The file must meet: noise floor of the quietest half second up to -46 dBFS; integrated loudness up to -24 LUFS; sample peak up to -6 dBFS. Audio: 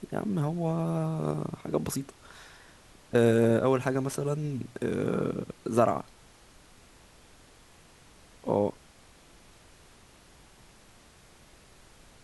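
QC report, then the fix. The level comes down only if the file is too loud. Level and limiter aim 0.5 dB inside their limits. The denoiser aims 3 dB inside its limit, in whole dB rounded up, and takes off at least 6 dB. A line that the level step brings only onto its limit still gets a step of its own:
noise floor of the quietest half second -56 dBFS: OK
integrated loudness -29.0 LUFS: OK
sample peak -9.0 dBFS: OK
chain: none

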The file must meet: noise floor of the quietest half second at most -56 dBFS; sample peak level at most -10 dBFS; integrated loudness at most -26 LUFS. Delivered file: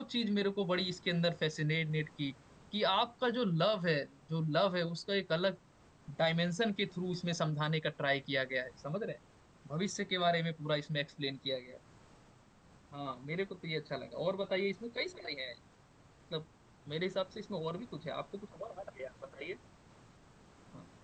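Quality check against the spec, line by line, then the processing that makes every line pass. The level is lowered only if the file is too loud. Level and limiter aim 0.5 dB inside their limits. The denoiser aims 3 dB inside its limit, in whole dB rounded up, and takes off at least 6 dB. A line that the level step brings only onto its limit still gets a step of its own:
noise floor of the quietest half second -63 dBFS: OK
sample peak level -19.0 dBFS: OK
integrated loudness -36.0 LUFS: OK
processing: none

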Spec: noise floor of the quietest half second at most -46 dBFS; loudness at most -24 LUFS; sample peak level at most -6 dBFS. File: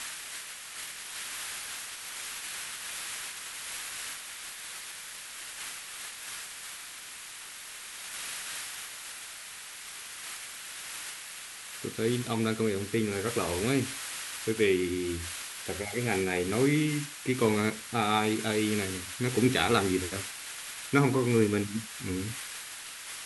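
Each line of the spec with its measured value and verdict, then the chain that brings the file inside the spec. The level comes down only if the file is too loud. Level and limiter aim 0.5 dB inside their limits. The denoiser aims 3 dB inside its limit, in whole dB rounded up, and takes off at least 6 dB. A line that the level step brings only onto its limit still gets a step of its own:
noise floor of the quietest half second -44 dBFS: fail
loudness -32.0 LUFS: OK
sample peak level -10.0 dBFS: OK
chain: denoiser 6 dB, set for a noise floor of -44 dBFS

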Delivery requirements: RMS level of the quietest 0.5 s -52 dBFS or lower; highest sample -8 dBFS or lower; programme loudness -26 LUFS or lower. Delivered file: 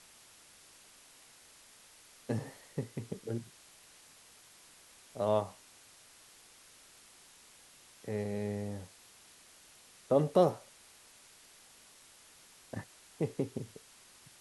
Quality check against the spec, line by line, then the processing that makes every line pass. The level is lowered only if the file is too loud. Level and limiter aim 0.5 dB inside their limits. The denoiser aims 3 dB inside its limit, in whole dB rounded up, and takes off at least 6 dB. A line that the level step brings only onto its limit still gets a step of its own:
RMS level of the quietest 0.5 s -59 dBFS: OK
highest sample -13.0 dBFS: OK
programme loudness -35.5 LUFS: OK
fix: none

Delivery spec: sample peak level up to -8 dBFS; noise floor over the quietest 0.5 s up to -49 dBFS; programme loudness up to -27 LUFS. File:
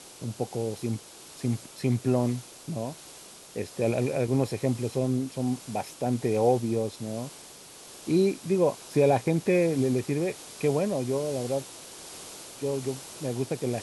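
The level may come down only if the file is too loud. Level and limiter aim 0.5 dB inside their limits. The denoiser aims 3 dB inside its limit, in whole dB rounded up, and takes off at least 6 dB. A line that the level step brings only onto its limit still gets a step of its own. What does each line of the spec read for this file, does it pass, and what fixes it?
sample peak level -11.0 dBFS: OK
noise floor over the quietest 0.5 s -48 dBFS: fail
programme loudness -28.5 LUFS: OK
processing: denoiser 6 dB, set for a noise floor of -48 dBFS

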